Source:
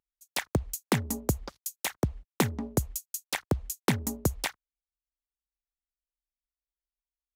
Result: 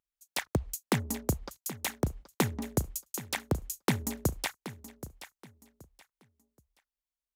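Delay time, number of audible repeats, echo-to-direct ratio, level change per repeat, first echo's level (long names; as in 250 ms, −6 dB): 776 ms, 2, −13.5 dB, −11.5 dB, −14.0 dB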